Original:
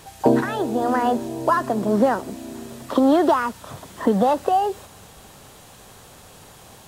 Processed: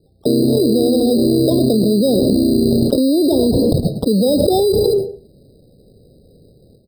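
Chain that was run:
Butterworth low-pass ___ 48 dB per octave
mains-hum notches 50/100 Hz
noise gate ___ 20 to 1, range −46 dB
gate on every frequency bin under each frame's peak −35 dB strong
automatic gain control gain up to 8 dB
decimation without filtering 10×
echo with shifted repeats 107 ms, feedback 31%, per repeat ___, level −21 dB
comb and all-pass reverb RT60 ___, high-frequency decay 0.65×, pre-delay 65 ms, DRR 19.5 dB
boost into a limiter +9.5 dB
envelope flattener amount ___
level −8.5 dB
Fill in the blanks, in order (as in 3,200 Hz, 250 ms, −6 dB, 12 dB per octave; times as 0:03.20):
540 Hz, −37 dBFS, +32 Hz, 0.45 s, 100%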